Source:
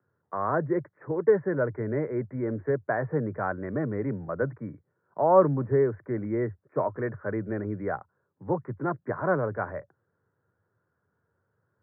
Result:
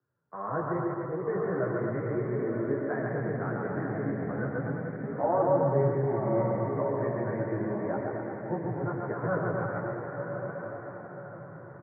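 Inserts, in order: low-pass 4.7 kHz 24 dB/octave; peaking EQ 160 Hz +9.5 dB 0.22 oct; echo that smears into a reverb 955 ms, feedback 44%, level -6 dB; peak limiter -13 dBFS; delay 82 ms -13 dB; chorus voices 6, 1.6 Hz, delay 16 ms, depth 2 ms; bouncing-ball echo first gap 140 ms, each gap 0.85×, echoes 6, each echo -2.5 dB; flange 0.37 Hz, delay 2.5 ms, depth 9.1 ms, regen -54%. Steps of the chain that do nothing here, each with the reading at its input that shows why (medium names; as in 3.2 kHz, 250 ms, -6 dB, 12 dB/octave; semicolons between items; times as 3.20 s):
low-pass 4.7 kHz: input has nothing above 1.9 kHz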